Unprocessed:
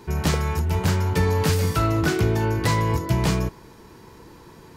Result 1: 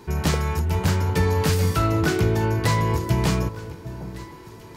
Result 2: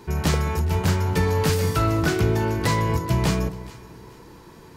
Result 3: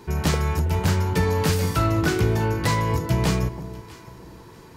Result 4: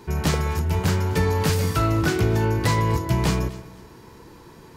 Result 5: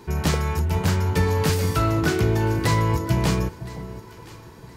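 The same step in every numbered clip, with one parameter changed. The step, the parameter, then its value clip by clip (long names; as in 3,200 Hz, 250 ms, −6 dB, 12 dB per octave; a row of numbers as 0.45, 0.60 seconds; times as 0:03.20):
delay that swaps between a low-pass and a high-pass, delay time: 754, 213, 323, 126, 509 milliseconds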